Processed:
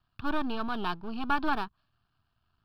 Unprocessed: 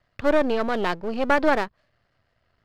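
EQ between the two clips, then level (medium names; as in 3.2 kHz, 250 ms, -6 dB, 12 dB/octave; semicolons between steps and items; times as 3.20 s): static phaser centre 2 kHz, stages 6; -4.0 dB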